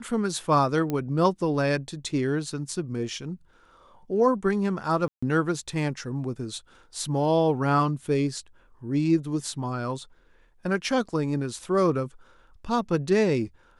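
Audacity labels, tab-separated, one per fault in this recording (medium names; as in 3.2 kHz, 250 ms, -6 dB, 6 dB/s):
0.900000	0.900000	pop -16 dBFS
5.080000	5.220000	dropout 145 ms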